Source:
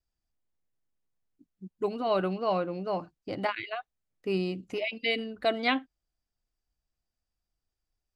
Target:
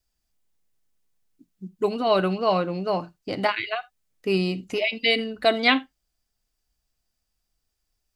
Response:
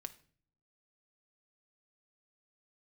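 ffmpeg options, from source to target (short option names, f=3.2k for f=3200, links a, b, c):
-filter_complex "[0:a]asplit=2[a][b];[1:a]atrim=start_sample=2205,atrim=end_sample=3969,highshelf=f=2.1k:g=10.5[c];[b][c]afir=irnorm=-1:irlink=0,volume=3.5dB[d];[a][d]amix=inputs=2:normalize=0"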